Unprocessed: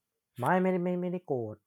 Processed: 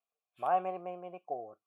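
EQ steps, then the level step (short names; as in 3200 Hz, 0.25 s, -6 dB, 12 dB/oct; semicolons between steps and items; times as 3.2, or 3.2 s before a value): vowel filter a; high shelf 4000 Hz +10.5 dB; +4.5 dB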